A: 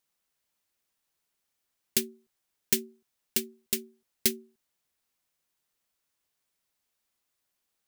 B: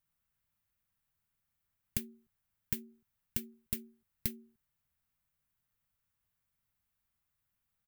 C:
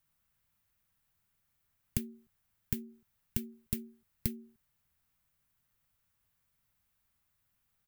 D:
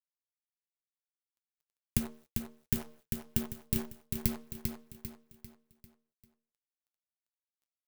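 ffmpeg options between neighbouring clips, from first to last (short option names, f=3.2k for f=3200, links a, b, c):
-af "equalizer=f=5.5k:w=0.46:g=-11.5,acompressor=threshold=-32dB:ratio=6,firequalizer=gain_entry='entry(110,0);entry(330,-20);entry(1300,-10)':delay=0.05:min_phase=1,volume=10.5dB"
-filter_complex "[0:a]acrossover=split=430[a][b];[b]acompressor=threshold=-41dB:ratio=3[c];[a][c]amix=inputs=2:normalize=0,volume=5.5dB"
-filter_complex "[0:a]acrusher=bits=8:dc=4:mix=0:aa=0.000001,flanger=delay=6.5:depth=3.7:regen=-61:speed=0.82:shape=triangular,asplit=2[a][b];[b]aecho=0:1:396|792|1188|1584|1980:0.562|0.236|0.0992|0.0417|0.0175[c];[a][c]amix=inputs=2:normalize=0,volume=7.5dB"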